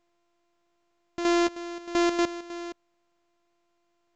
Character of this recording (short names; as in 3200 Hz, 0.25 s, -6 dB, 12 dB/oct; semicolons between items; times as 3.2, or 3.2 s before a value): a buzz of ramps at a fixed pitch in blocks of 128 samples; chopped level 3.2 Hz, depth 60%, duty 70%; A-law